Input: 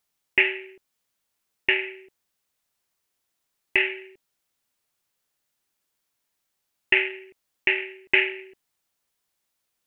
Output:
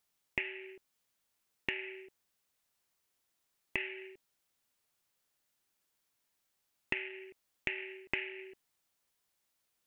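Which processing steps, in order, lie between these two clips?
compressor 16:1, threshold -30 dBFS, peak gain reduction 17.5 dB; gain -2.5 dB

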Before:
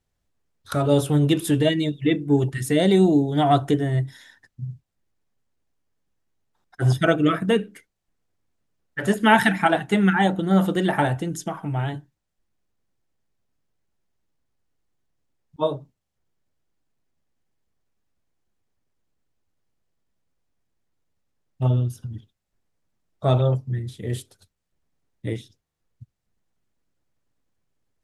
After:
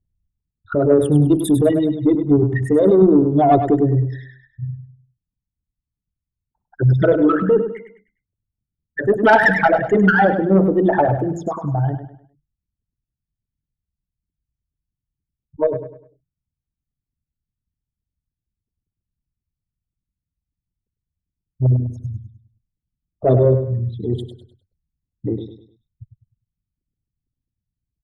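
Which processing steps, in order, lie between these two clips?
formant sharpening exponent 3; added harmonics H 5 -22 dB, 8 -35 dB, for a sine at -3 dBFS; low-pass opened by the level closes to 1000 Hz, open at -15 dBFS; feedback echo 0.101 s, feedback 35%, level -9 dB; gain +2.5 dB

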